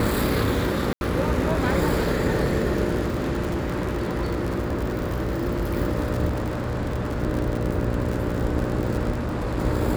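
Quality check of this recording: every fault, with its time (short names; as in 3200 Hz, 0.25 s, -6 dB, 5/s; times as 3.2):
buzz 60 Hz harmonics 10 -28 dBFS
crackle 75/s -26 dBFS
0.93–1.01 gap 81 ms
3.05–5.75 clipped -20.5 dBFS
6.28–7.23 clipped -22 dBFS
9.11–9.59 clipped -23 dBFS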